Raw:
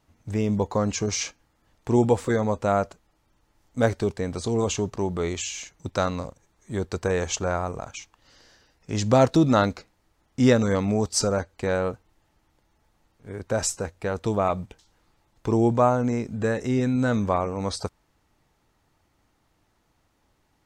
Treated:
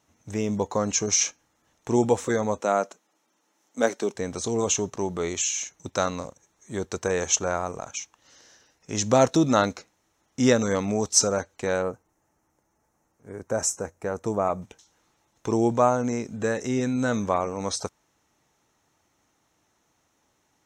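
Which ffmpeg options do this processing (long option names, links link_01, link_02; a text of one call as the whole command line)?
ffmpeg -i in.wav -filter_complex "[0:a]asettb=1/sr,asplit=3[link_01][link_02][link_03];[link_01]atrim=end=2.604[link_04];[link_02]atrim=start=2.6:end=4.15,asetpts=PTS-STARTPTS,afade=type=in:duration=0.004:curve=qsin,afade=type=out:start_time=1.546:duration=0.004:curve=qsin,highpass=frequency=200:width=0.5412,highpass=frequency=200:width=1.3066[link_05];[link_03]atrim=start=4.146[link_06];[link_04][link_05]acrossfade=duration=0.004:curve1=hsin:curve2=qsin[link_07];[link_07][link_06]acrossfade=duration=0.004:curve1=qsin:curve2=hsin,asettb=1/sr,asplit=3[link_08][link_09][link_10];[link_08]atrim=end=11.824[link_11];[link_09]atrim=start=11.82:end=14.62,asetpts=PTS-STARTPTS,afade=type=in:duration=0.004:curve=qsin,afade=type=out:start_time=2.796:duration=0.004:curve=qsin,equalizer=frequency=3500:width=1.1:gain=-14.5[link_12];[link_10]atrim=start=14.616[link_13];[link_11][link_12]acrossfade=duration=0.004:curve1=hsin:curve2=qsin[link_14];[link_14][link_13]acrossfade=duration=0.004:curve1=qsin:curve2=hsin,highpass=frequency=200:poles=1,equalizer=frequency=6200:width_type=o:width=0.53:gain=9,bandreject=frequency=4700:width=7.7" out.wav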